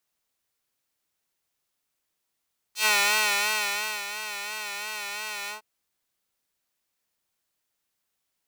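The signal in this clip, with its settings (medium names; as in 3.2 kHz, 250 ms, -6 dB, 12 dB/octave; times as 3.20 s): synth patch with vibrato G#4, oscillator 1 triangle, oscillator 2 square, interval +12 st, detune 22 cents, sub -0.5 dB, noise -20 dB, filter highpass, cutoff 880 Hz, Q 1.1, filter envelope 2.5 oct, filter decay 0.10 s, attack 99 ms, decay 1.20 s, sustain -13 dB, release 0.12 s, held 2.74 s, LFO 2.9 Hz, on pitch 59 cents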